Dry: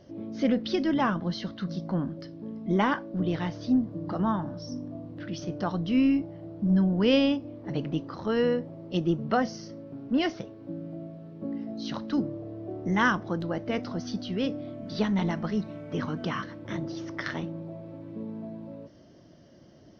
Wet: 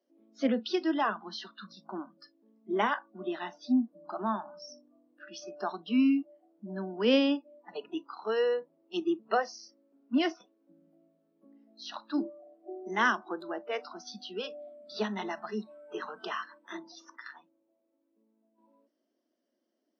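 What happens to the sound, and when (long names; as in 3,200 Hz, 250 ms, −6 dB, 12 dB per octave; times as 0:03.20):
0:17.16–0:18.58: clip gain −9 dB
whole clip: noise reduction from a noise print of the clip's start 23 dB; Butterworth high-pass 220 Hz 72 dB per octave; level −1.5 dB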